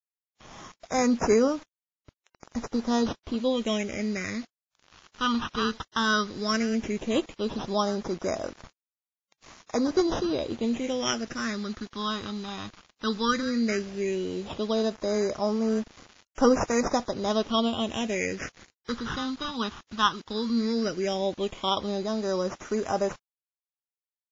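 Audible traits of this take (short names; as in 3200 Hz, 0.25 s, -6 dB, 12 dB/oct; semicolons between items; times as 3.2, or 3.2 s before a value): aliases and images of a low sample rate 4400 Hz, jitter 0%; phasing stages 6, 0.14 Hz, lowest notch 570–3600 Hz; a quantiser's noise floor 8-bit, dither none; WMA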